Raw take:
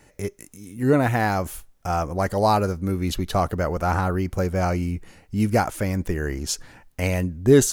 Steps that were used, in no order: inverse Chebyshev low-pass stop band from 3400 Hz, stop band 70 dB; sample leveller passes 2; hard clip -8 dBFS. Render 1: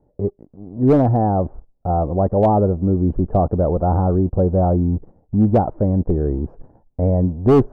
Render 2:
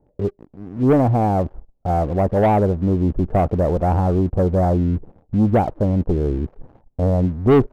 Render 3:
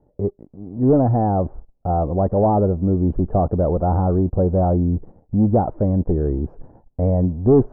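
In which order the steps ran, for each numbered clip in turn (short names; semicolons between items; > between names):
sample leveller > inverse Chebyshev low-pass > hard clip; inverse Chebyshev low-pass > hard clip > sample leveller; hard clip > sample leveller > inverse Chebyshev low-pass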